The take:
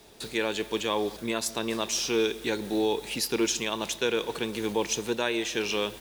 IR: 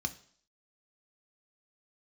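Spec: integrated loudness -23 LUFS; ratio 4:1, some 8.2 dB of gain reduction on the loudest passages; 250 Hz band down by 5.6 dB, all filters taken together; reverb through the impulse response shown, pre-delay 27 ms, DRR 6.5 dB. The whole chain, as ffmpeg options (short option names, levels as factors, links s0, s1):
-filter_complex "[0:a]equalizer=f=250:t=o:g=-8.5,acompressor=threshold=0.02:ratio=4,asplit=2[s0][s1];[1:a]atrim=start_sample=2205,adelay=27[s2];[s1][s2]afir=irnorm=-1:irlink=0,volume=0.376[s3];[s0][s3]amix=inputs=2:normalize=0,volume=4.22"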